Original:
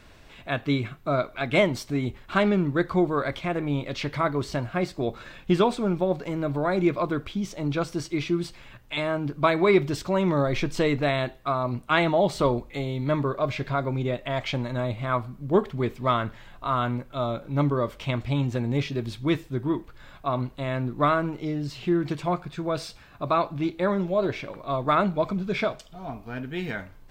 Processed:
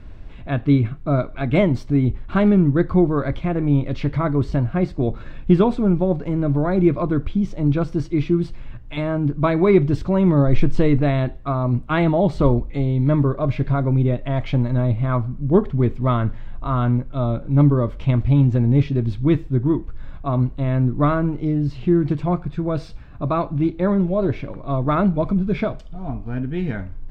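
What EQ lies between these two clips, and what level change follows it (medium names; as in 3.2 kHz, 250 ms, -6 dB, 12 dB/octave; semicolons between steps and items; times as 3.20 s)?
RIAA curve playback; peaking EQ 280 Hz +3 dB 0.44 oct; 0.0 dB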